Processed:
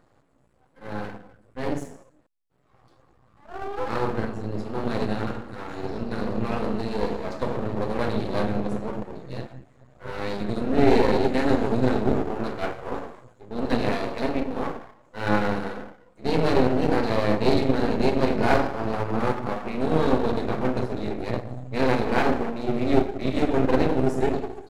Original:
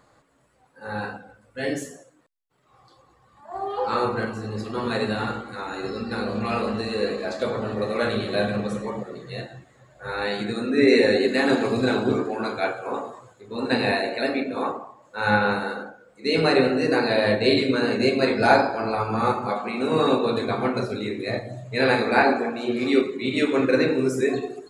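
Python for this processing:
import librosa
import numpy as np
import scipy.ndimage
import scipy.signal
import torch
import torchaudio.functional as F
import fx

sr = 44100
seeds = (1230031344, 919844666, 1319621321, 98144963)

y = fx.tilt_shelf(x, sr, db=6.5, hz=730.0)
y = np.maximum(y, 0.0)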